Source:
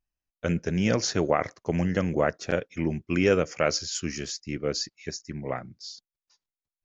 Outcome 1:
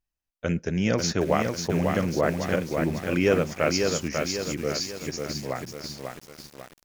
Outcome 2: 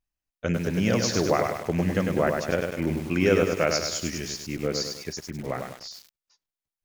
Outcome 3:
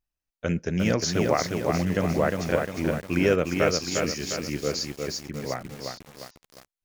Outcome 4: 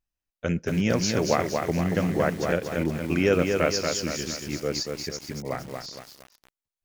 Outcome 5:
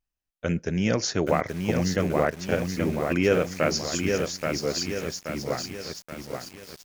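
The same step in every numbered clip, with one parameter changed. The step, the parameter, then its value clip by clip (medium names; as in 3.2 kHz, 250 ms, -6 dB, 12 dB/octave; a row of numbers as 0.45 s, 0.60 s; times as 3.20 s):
bit-crushed delay, time: 545 ms, 101 ms, 354 ms, 233 ms, 828 ms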